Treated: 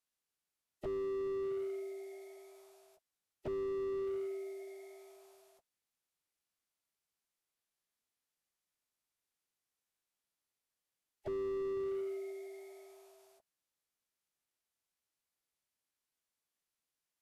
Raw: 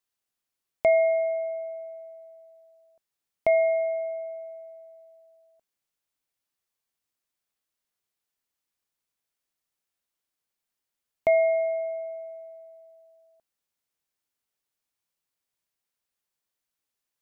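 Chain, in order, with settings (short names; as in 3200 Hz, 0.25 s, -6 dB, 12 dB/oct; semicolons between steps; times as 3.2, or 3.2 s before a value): formant-preserving pitch shift -9 st; slew limiter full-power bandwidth 10 Hz; gain -4 dB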